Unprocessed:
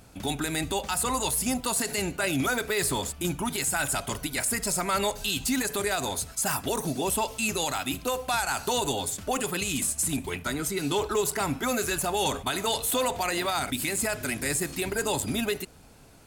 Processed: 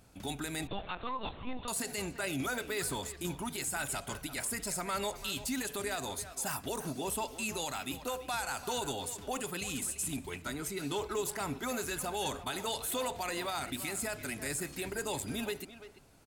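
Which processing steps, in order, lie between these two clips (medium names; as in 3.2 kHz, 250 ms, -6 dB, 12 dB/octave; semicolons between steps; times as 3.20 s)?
speakerphone echo 340 ms, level -11 dB; 0.67–1.68 s: LPC vocoder at 8 kHz pitch kept; trim -8.5 dB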